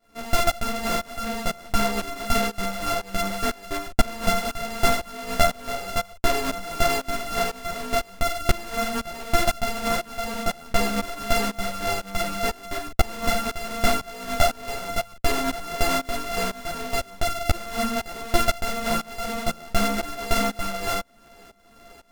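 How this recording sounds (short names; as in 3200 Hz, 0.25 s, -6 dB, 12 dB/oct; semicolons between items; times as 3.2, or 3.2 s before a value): a buzz of ramps at a fixed pitch in blocks of 64 samples; tremolo saw up 2 Hz, depth 95%; a shimmering, thickened sound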